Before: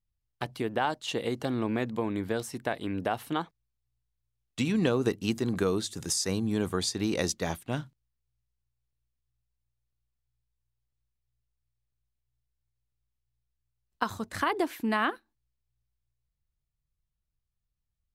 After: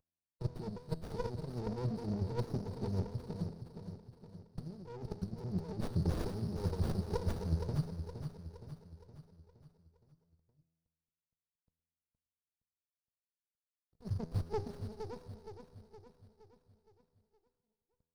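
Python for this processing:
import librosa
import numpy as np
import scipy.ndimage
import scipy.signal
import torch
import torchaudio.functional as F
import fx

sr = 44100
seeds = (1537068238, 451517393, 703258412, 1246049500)

y = fx.cvsd(x, sr, bps=32000)
y = fx.dereverb_blind(y, sr, rt60_s=0.79)
y = fx.over_compress(y, sr, threshold_db=-36.0, ratio=-0.5)
y = fx.fixed_phaser(y, sr, hz=1500.0, stages=8)
y = fx.comb_fb(y, sr, f0_hz=82.0, decay_s=1.4, harmonics='all', damping=0.0, mix_pct=70)
y = fx.vibrato(y, sr, rate_hz=11.0, depth_cents=41.0)
y = fx.brickwall_bandstop(y, sr, low_hz=520.0, high_hz=4300.0)
y = fx.echo_feedback(y, sr, ms=467, feedback_pct=50, wet_db=-8.0)
y = fx.running_max(y, sr, window=33)
y = y * 10.0 ** (16.0 / 20.0)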